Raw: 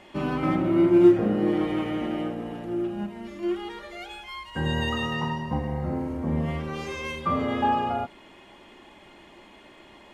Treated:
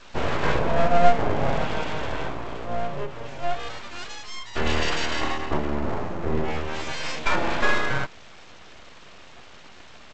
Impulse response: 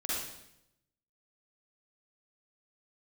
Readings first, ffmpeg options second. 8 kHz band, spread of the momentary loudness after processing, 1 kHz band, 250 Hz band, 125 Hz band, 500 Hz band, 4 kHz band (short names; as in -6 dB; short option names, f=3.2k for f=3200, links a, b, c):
n/a, 12 LU, +3.5 dB, -8.0 dB, -1.0 dB, 0.0 dB, +5.5 dB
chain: -af "adynamicequalizer=threshold=0.0126:dfrequency=270:dqfactor=1.9:tfrequency=270:tqfactor=1.9:attack=5:release=100:ratio=0.375:range=3:mode=cutabove:tftype=bell,aresample=16000,aeval=exprs='abs(val(0))':c=same,aresample=44100,volume=6dB"